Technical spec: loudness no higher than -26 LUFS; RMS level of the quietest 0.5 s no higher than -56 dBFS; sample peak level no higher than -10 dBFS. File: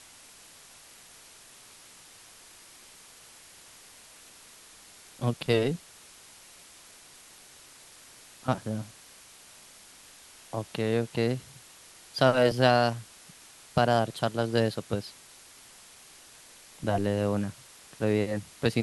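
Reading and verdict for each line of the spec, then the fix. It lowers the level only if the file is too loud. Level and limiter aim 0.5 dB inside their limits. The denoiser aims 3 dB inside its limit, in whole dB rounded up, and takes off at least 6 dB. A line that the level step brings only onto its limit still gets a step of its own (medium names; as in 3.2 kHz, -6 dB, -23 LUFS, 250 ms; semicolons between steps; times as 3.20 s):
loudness -28.5 LUFS: pass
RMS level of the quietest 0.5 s -52 dBFS: fail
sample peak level -6.5 dBFS: fail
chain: noise reduction 7 dB, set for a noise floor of -52 dBFS; peak limiter -10.5 dBFS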